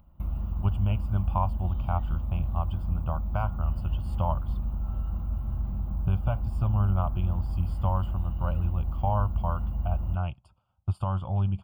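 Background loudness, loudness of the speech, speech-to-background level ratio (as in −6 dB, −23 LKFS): −33.0 LKFS, −31.0 LKFS, 2.0 dB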